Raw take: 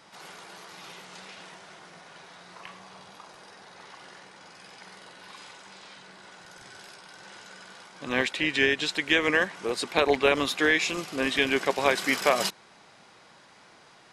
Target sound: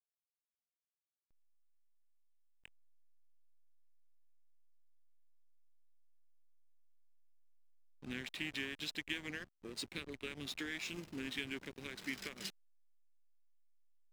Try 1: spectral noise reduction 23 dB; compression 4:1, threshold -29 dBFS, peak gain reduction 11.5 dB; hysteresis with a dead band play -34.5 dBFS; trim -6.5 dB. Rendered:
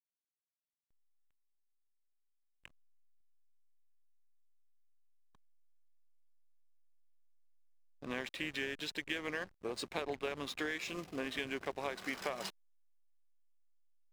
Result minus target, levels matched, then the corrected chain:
1 kHz band +9.5 dB
spectral noise reduction 23 dB; compression 4:1, threshold -29 dBFS, peak gain reduction 11.5 dB; Butterworth band-stop 790 Hz, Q 0.52; hysteresis with a dead band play -34.5 dBFS; trim -6.5 dB

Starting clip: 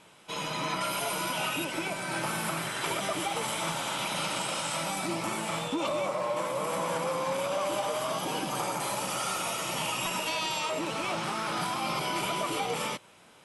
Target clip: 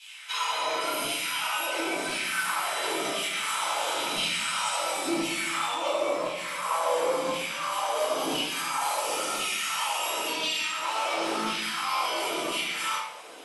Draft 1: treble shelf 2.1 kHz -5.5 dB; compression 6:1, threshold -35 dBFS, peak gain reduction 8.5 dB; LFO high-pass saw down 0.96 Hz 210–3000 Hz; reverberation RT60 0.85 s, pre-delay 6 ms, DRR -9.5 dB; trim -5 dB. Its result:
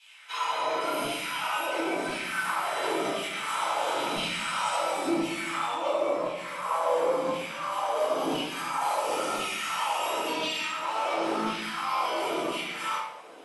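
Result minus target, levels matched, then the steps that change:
4 kHz band -3.5 dB
change: treble shelf 2.1 kHz +6 dB

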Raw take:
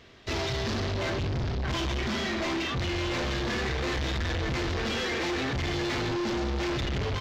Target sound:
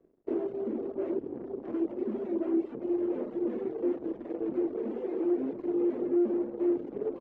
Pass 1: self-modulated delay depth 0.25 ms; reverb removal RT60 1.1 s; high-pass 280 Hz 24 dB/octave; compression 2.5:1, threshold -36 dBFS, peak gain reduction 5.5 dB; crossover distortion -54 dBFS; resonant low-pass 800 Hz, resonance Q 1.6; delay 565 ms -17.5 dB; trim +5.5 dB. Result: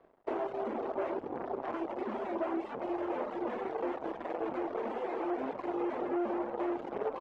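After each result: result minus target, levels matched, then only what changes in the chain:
1 kHz band +16.0 dB; echo 364 ms early; compression: peak gain reduction +5.5 dB
change: resonant low-pass 360 Hz, resonance Q 1.6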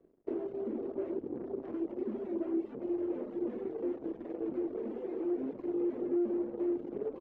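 echo 364 ms early; compression: peak gain reduction +5.5 dB
change: delay 929 ms -17.5 dB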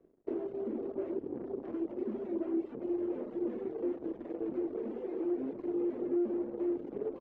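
compression: peak gain reduction +5.5 dB
remove: compression 2.5:1, threshold -36 dBFS, peak gain reduction 5.5 dB

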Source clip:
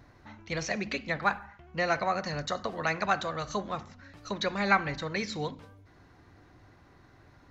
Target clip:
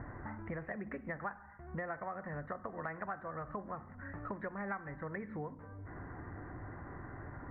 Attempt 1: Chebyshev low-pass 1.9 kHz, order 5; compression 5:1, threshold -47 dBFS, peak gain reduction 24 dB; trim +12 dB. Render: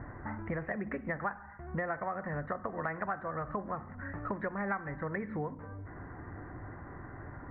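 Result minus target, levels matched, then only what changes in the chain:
compression: peak gain reduction -5.5 dB
change: compression 5:1, threshold -54 dBFS, peak gain reduction 29.5 dB

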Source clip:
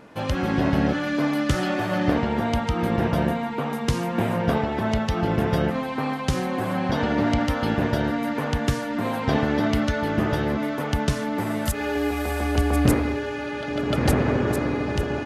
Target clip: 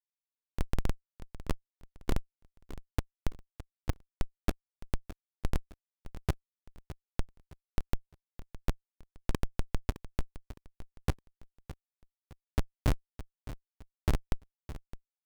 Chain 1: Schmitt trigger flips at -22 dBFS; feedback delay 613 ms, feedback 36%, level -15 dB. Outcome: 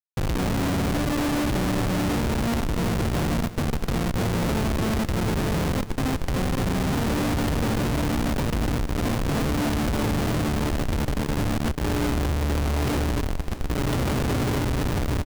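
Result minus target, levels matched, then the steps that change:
Schmitt trigger: distortion -19 dB
change: Schmitt trigger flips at -11.5 dBFS

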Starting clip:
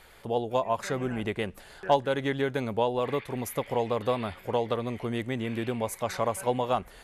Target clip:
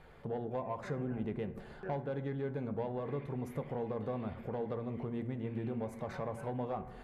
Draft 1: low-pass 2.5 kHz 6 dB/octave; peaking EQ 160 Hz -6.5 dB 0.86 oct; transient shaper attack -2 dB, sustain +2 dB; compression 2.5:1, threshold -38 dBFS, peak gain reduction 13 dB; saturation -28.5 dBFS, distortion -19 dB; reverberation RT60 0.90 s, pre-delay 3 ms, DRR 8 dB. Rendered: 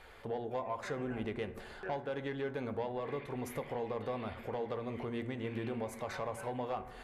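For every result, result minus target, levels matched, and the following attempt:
2 kHz band +6.0 dB; 125 Hz band -4.5 dB
low-pass 750 Hz 6 dB/octave; peaking EQ 160 Hz -6.5 dB 0.86 oct; transient shaper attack -2 dB, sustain +2 dB; compression 2.5:1, threshold -38 dBFS, peak gain reduction 12 dB; saturation -28.5 dBFS, distortion -21 dB; reverberation RT60 0.90 s, pre-delay 3 ms, DRR 8 dB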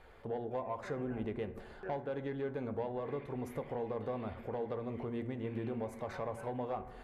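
125 Hz band -3.5 dB
low-pass 750 Hz 6 dB/octave; peaking EQ 160 Hz +4 dB 0.86 oct; transient shaper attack -2 dB, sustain +2 dB; compression 2.5:1, threshold -38 dBFS, peak gain reduction 12 dB; saturation -28.5 dBFS, distortion -22 dB; reverberation RT60 0.90 s, pre-delay 3 ms, DRR 8 dB

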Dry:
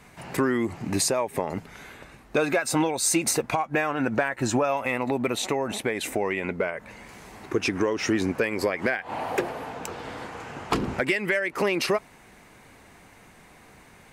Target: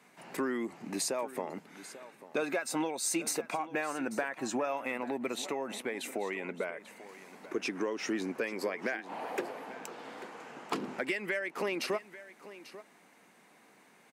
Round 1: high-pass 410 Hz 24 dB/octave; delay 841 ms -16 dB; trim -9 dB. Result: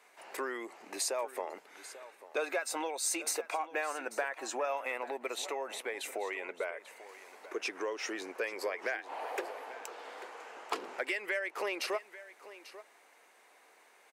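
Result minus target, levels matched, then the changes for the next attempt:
250 Hz band -9.0 dB
change: high-pass 190 Hz 24 dB/octave

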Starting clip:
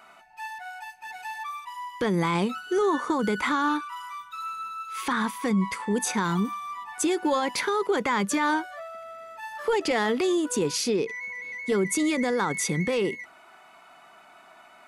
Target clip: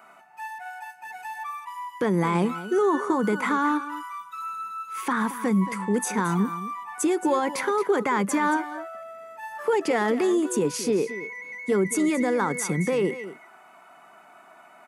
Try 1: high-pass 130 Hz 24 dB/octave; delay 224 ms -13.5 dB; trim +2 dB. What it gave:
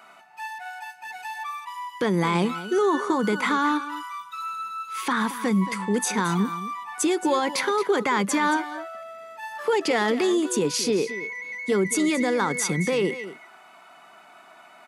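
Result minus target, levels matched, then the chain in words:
4 kHz band +7.5 dB
high-pass 130 Hz 24 dB/octave; peaking EQ 4 kHz -10 dB 1.3 oct; delay 224 ms -13.5 dB; trim +2 dB

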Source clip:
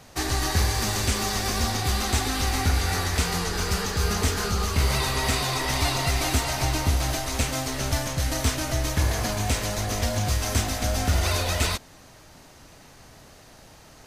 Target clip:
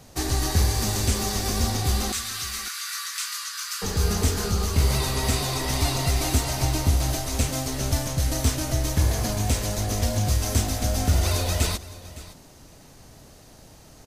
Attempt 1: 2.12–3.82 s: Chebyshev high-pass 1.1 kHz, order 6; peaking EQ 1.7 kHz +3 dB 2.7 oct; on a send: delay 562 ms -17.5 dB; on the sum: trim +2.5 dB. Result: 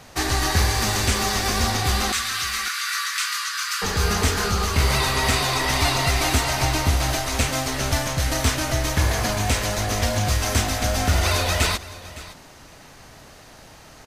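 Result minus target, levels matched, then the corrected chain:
2 kHz band +7.0 dB
2.12–3.82 s: Chebyshev high-pass 1.1 kHz, order 6; peaking EQ 1.7 kHz -7.5 dB 2.7 oct; on a send: delay 562 ms -17.5 dB; on the sum: trim +2.5 dB

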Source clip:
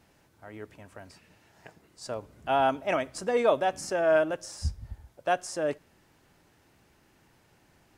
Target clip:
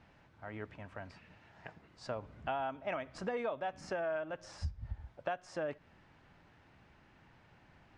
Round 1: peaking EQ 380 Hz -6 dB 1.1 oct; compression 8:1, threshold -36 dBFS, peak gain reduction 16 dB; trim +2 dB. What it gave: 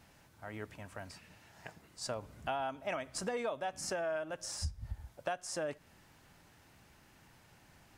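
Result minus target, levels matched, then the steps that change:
4 kHz band +7.0 dB
add after compression: low-pass 2.9 kHz 12 dB/octave

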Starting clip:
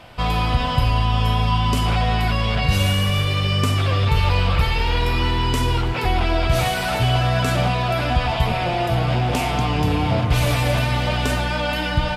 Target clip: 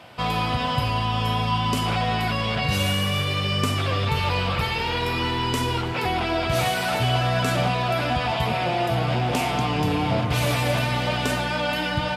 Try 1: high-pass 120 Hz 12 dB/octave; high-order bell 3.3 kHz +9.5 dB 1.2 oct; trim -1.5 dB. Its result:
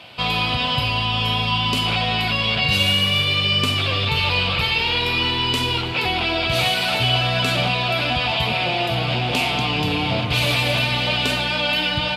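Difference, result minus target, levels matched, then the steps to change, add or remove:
4 kHz band +5.0 dB
remove: high-order bell 3.3 kHz +9.5 dB 1.2 oct

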